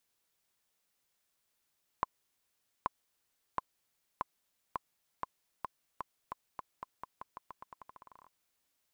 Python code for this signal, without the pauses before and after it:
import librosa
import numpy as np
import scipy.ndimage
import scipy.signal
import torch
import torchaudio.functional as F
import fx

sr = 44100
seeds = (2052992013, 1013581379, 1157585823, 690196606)

y = fx.bouncing_ball(sr, first_gap_s=0.83, ratio=0.87, hz=1030.0, decay_ms=21.0, level_db=-16.0)